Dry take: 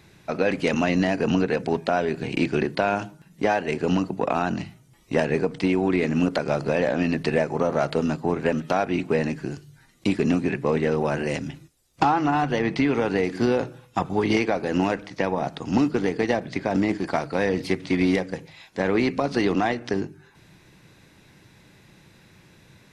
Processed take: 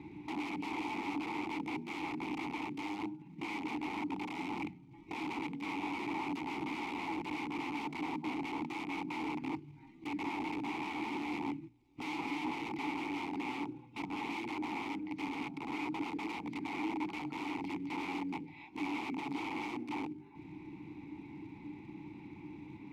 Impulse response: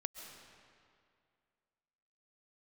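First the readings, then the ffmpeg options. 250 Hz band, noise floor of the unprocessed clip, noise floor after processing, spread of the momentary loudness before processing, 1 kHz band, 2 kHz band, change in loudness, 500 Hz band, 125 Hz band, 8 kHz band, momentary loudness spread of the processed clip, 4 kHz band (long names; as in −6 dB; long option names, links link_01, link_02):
−13.5 dB, −55 dBFS, −55 dBFS, 7 LU, −12.0 dB, −12.0 dB, −15.5 dB, −23.5 dB, −21.5 dB, −14.5 dB, 10 LU, −11.0 dB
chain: -filter_complex "[0:a]aemphasis=mode=reproduction:type=bsi,bandreject=frequency=60:width_type=h:width=6,bandreject=frequency=120:width_type=h:width=6,bandreject=frequency=180:width_type=h:width=6,bandreject=frequency=240:width_type=h:width=6,acompressor=threshold=-43dB:ratio=2,aeval=exprs='(mod(29.9*val(0)+1,2)-1)/29.9':channel_layout=same,acrusher=bits=5:mode=log:mix=0:aa=0.000001,aeval=exprs='(mod(53.1*val(0)+1,2)-1)/53.1':channel_layout=same,asplit=3[link_01][link_02][link_03];[link_01]bandpass=frequency=300:width_type=q:width=8,volume=0dB[link_04];[link_02]bandpass=frequency=870:width_type=q:width=8,volume=-6dB[link_05];[link_03]bandpass=frequency=2240:width_type=q:width=8,volume=-9dB[link_06];[link_04][link_05][link_06]amix=inputs=3:normalize=0,volume=14.5dB"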